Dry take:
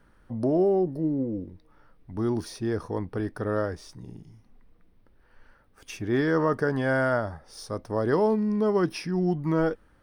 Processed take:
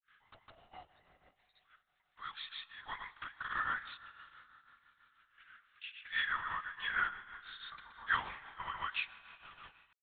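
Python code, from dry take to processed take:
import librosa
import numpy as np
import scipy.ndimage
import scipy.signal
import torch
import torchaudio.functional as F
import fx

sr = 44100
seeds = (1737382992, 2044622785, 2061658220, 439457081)

y = fx.tape_stop_end(x, sr, length_s=0.78)
y = scipy.signal.sosfilt(scipy.signal.butter(4, 1300.0, 'highpass', fs=sr, output='sos'), y)
y = fx.high_shelf(y, sr, hz=2600.0, db=12.0)
y = fx.rider(y, sr, range_db=5, speed_s=0.5)
y = fx.step_gate(y, sr, bpm=147, pattern='.xxxx..xxxxx.', floor_db=-12.0, edge_ms=4.5)
y = fx.lpc_vocoder(y, sr, seeds[0], excitation='whisper', order=10)
y = fx.rev_schroeder(y, sr, rt60_s=3.9, comb_ms=29, drr_db=13.5)
y = fx.granulator(y, sr, seeds[1], grain_ms=252.0, per_s=6.1, spray_ms=100.0, spread_st=0)
y = y * librosa.db_to_amplitude(1.0)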